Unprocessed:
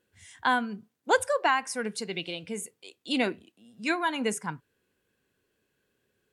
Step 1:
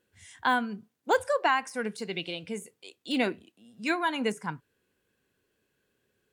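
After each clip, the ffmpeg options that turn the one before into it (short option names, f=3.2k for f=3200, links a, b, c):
-af "deesser=0.8"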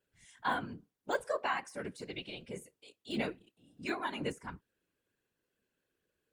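-af "afftfilt=real='hypot(re,im)*cos(2*PI*random(0))':imag='hypot(re,im)*sin(2*PI*random(1))':win_size=512:overlap=0.75,volume=-2.5dB"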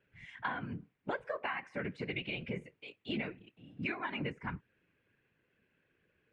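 -af "lowpass=f=2.3k:t=q:w=2.8,equalizer=f=130:t=o:w=1.5:g=8,acompressor=threshold=-39dB:ratio=10,volume=5dB"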